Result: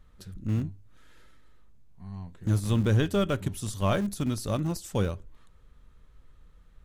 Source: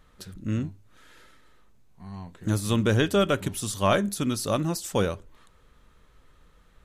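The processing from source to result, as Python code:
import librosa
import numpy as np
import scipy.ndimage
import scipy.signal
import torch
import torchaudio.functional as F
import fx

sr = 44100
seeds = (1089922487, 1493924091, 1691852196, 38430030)

p1 = fx.low_shelf(x, sr, hz=170.0, db=11.5)
p2 = fx.schmitt(p1, sr, flips_db=-19.5)
p3 = p1 + (p2 * 10.0 ** (-11.0 / 20.0))
y = p3 * 10.0 ** (-7.0 / 20.0)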